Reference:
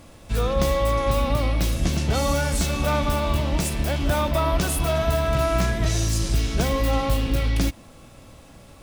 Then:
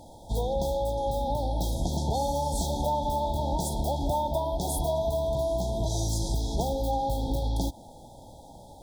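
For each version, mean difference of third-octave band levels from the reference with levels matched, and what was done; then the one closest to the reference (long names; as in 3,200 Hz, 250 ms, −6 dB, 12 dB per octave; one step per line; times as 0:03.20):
8.5 dB: parametric band 870 Hz +12.5 dB 0.87 octaves
downward compressor, threshold −20 dBFS, peak gain reduction 8 dB
linear-phase brick-wall band-stop 970–3,200 Hz
level −3.5 dB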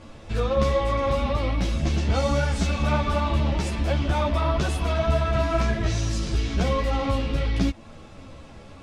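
4.5 dB: in parallel at +0.5 dB: downward compressor, threshold −30 dBFS, peak gain reduction 13 dB
on the sum: high-frequency loss of the air 94 metres
string-ensemble chorus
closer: second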